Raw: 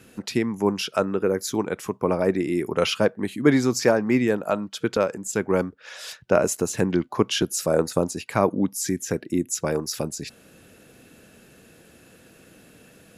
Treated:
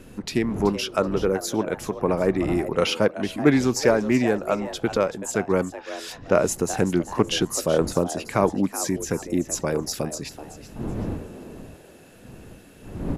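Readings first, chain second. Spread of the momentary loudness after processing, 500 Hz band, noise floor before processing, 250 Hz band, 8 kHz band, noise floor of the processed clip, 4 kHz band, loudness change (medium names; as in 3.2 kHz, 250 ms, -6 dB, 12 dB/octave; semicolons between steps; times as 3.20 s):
14 LU, +0.5 dB, -53 dBFS, +0.5 dB, 0.0 dB, -47 dBFS, 0.0 dB, 0.0 dB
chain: wind noise 260 Hz -38 dBFS; frequency-shifting echo 379 ms, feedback 31%, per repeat +150 Hz, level -13.5 dB; loudspeaker Doppler distortion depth 0.11 ms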